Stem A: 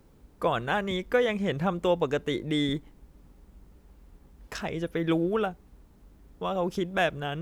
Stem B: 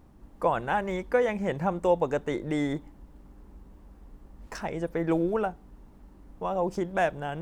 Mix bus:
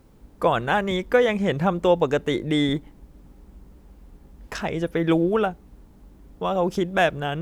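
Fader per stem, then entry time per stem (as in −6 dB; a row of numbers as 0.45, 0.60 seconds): +3.0, −5.0 decibels; 0.00, 0.00 seconds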